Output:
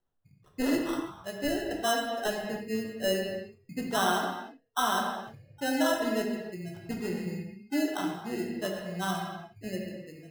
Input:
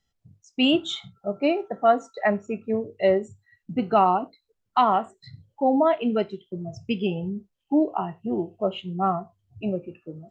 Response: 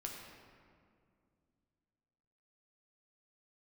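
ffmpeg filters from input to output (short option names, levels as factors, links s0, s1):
-filter_complex "[0:a]acrusher=samples=19:mix=1:aa=0.000001[s0];[1:a]atrim=start_sample=2205,afade=t=out:st=0.38:d=0.01,atrim=end_sample=17199[s1];[s0][s1]afir=irnorm=-1:irlink=0,volume=0.531"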